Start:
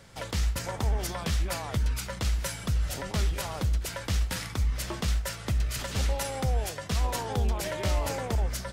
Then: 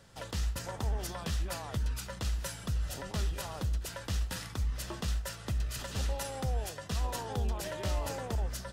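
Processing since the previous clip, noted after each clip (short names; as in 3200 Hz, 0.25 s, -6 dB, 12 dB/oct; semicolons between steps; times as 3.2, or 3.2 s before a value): notch 2200 Hz, Q 8; gain -5.5 dB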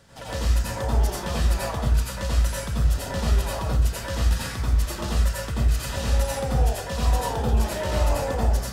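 plate-style reverb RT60 0.53 s, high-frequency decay 0.5×, pre-delay 75 ms, DRR -6 dB; gain +3 dB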